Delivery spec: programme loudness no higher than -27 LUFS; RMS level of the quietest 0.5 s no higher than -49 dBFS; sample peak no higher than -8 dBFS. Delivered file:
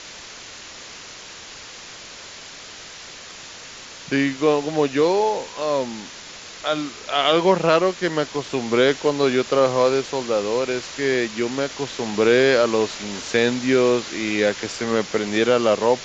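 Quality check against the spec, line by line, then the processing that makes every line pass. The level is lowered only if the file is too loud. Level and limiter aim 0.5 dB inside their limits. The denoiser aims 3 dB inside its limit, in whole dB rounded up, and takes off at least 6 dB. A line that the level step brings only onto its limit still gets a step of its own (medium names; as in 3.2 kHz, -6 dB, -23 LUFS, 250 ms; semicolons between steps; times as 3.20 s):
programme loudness -20.5 LUFS: fail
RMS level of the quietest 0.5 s -39 dBFS: fail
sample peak -3.5 dBFS: fail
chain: noise reduction 6 dB, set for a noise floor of -39 dBFS; trim -7 dB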